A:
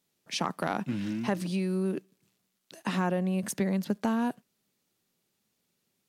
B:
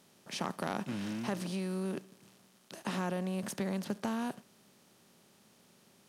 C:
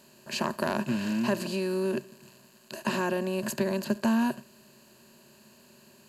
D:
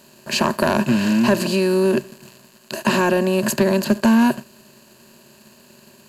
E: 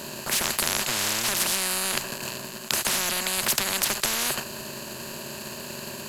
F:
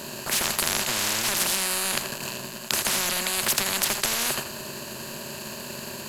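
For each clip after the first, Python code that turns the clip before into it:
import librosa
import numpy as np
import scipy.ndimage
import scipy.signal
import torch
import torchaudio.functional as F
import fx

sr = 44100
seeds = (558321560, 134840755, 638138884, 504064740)

y1 = fx.bin_compress(x, sr, power=0.6)
y1 = y1 * 10.0 ** (-8.5 / 20.0)
y2 = fx.ripple_eq(y1, sr, per_octave=1.4, db=12)
y2 = y2 * 10.0 ** (5.5 / 20.0)
y3 = fx.leveller(y2, sr, passes=1)
y3 = y3 * 10.0 ** (8.0 / 20.0)
y4 = fx.spectral_comp(y3, sr, ratio=10.0)
y4 = y4 * 10.0 ** (4.0 / 20.0)
y5 = y4 + 10.0 ** (-10.0 / 20.0) * np.pad(y4, (int(83 * sr / 1000.0), 0))[:len(y4)]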